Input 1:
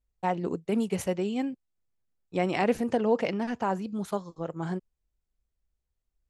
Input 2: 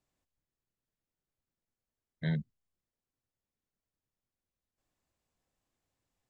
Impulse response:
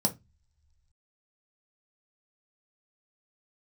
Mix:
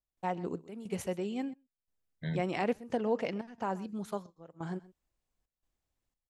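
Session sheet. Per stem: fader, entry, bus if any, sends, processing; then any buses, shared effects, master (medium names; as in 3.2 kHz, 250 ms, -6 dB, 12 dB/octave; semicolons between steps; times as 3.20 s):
-6.0 dB, 0.00 s, no send, echo send -20 dB, none
-4.0 dB, 0.00 s, no send, no echo send, none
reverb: none
echo: delay 126 ms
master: trance gate ".xxx.xxxx..xxxxx" 88 bpm -12 dB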